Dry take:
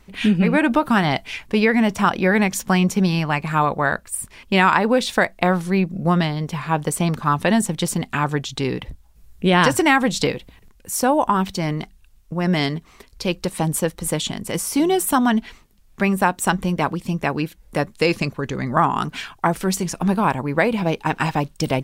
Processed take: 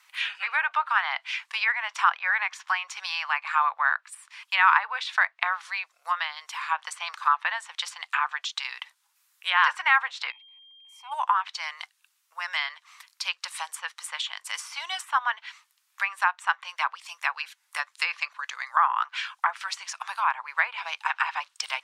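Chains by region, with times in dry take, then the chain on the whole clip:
10.30–11.11 s: whistle 3.2 kHz -29 dBFS + vowel filter u
whole clip: steep high-pass 1 kHz 36 dB/octave; low-pass that closes with the level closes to 2.2 kHz, closed at -21.5 dBFS

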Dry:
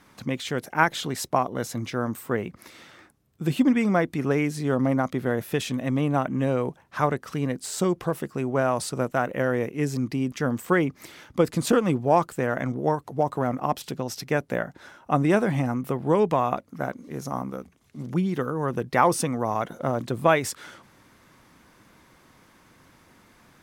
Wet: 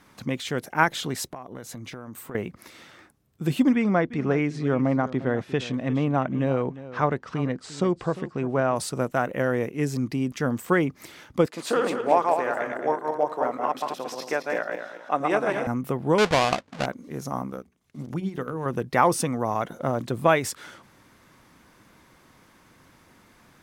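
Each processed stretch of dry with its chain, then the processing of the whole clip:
1.27–2.35 s: band-stop 5.3 kHz, Q 13 + compression 8:1, threshold -34 dBFS
3.75–8.76 s: Gaussian low-pass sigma 1.5 samples + delay 352 ms -15.5 dB
11.46–15.67 s: backward echo that repeats 110 ms, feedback 53%, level -2.5 dB + high-pass 450 Hz + treble shelf 6.3 kHz -11.5 dB
16.18–16.86 s: square wave that keeps the level + low-pass 5.4 kHz + bass shelf 320 Hz -7 dB
17.47–18.66 s: compression 1.5:1, threshold -30 dBFS + hum notches 60/120/180/240/300/360/420 Hz + transient shaper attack +1 dB, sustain -9 dB
whole clip: none

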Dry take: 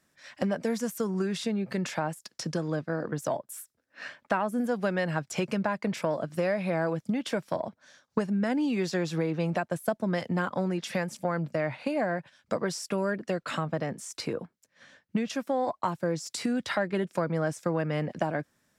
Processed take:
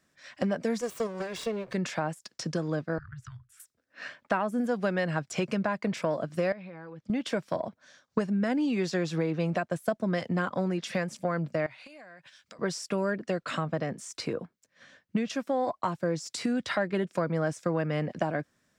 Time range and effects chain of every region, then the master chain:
0.81–1.74 s: comb filter that takes the minimum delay 1.8 ms + high-pass 180 Hz 6 dB/octave
2.98–3.60 s: Chebyshev band-stop 120–1300 Hz, order 4 + tilt EQ -4.5 dB/octave + compression 2:1, threshold -44 dBFS
6.52–7.10 s: low-pass 4.2 kHz + band-stop 670 Hz, Q 6.2 + compression 4:1, threshold -43 dBFS
11.66–12.59 s: tilt shelf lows -8 dB, about 1.2 kHz + compression 8:1, threshold -46 dBFS
whole clip: peaking EQ 12 kHz -9.5 dB 0.5 oct; band-stop 870 Hz, Q 13

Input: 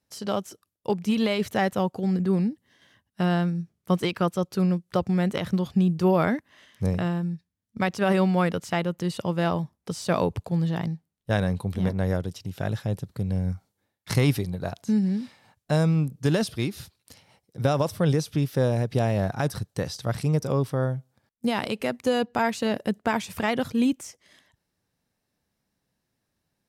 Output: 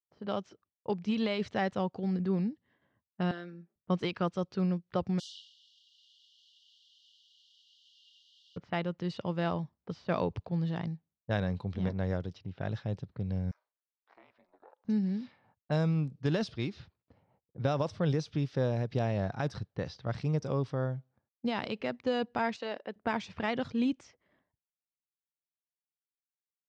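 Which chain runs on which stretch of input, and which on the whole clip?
3.31–3.76 s: compression 4:1, threshold -28 dBFS + high-pass 270 Hz 24 dB/octave + comb 5.2 ms, depth 81%
5.18–8.56 s: tilt EQ -3 dB/octave + added noise white -31 dBFS + brick-wall FIR high-pass 2.8 kHz
13.51–14.85 s: high-pass 680 Hz 24 dB/octave + compression 2:1, threshold -46 dBFS + ring modulator 170 Hz
22.56–22.96 s: high-pass 450 Hz + de-esser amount 95%
whole clip: expander -56 dBFS; low-pass 5.5 kHz 24 dB/octave; level-controlled noise filter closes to 830 Hz, open at -21.5 dBFS; trim -7 dB

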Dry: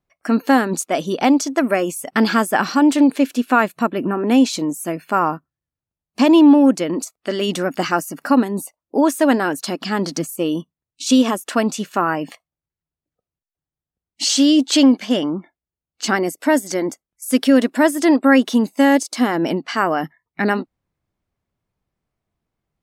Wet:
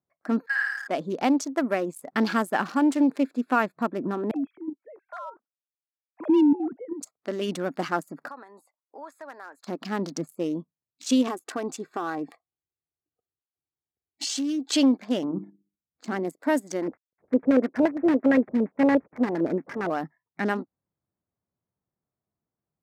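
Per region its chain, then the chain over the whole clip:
0.46–0.88 s: ladder high-pass 1.6 kHz, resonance 85% + peaking EQ 9.3 kHz -12.5 dB 0.57 oct + flutter echo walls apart 9.3 m, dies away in 1.4 s
4.31–7.01 s: formants replaced by sine waves + level held to a coarse grid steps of 9 dB + band-stop 400 Hz, Q 6.7
8.28–9.67 s: high-pass 1 kHz + compression 2:1, threshold -33 dBFS
11.27–14.73 s: comb 2.6 ms, depth 61% + compression 5:1, threshold -17 dBFS
15.24–16.25 s: bass shelf 420 Hz +9.5 dB + hum notches 50/100/150/200/250/300/350/400/450 Hz + level held to a coarse grid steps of 10 dB
16.82–19.90 s: CVSD coder 16 kbps + LFO low-pass square 8.7 Hz 520–2100 Hz
whole clip: local Wiener filter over 15 samples; high-pass 100 Hz; trim -7.5 dB

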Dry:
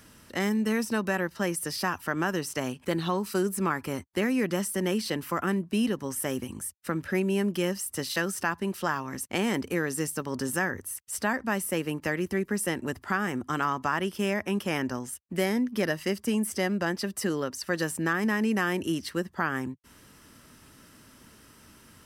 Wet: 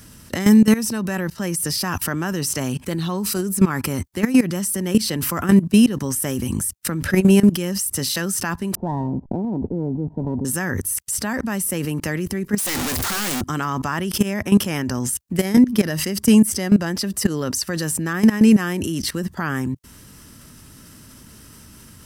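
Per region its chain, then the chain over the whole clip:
8.75–10.45 s: send-on-delta sampling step -43.5 dBFS + rippled Chebyshev low-pass 970 Hz, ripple 3 dB + sliding maximum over 3 samples
12.58–13.41 s: one-bit comparator + bass shelf 340 Hz -11 dB
whole clip: tone controls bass +9 dB, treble +7 dB; level held to a coarse grid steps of 21 dB; loudness maximiser +23 dB; trim -4.5 dB

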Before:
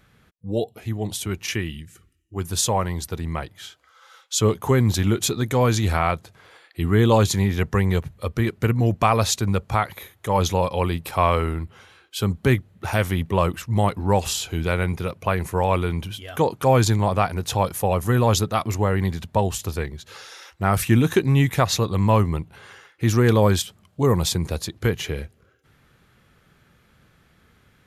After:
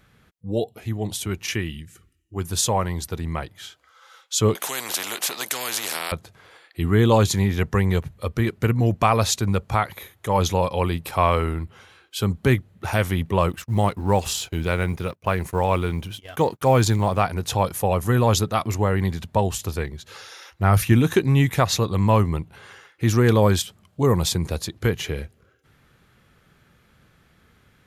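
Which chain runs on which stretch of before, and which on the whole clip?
4.55–6.12 s: high-pass 460 Hz 24 dB/octave + spectrum-flattening compressor 4:1
13.49–17.22 s: companding laws mixed up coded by A + gate -41 dBFS, range -17 dB
20.21–20.93 s: peaking EQ 99 Hz +6.5 dB 0.32 oct + band-stop 7.9 kHz, Q 6
whole clip: none

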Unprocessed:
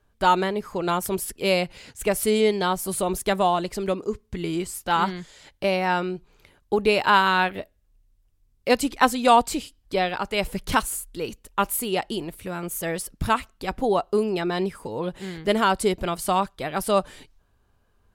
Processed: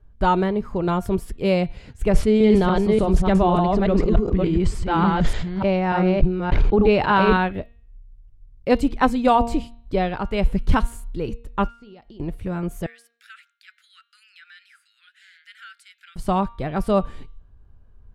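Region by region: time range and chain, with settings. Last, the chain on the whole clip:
2.11–7.37 s: chunks repeated in reverse 293 ms, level -2.5 dB + low-pass 5.7 kHz + decay stretcher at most 41 dB/s
11.68–12.20 s: compression, threshold -36 dBFS + four-pole ladder low-pass 5.9 kHz, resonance 45%
12.86–16.16 s: steep high-pass 1.4 kHz 96 dB/octave + compression 2:1, threshold -46 dBFS
whole clip: RIAA curve playback; de-hum 233.8 Hz, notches 18; trim -1 dB

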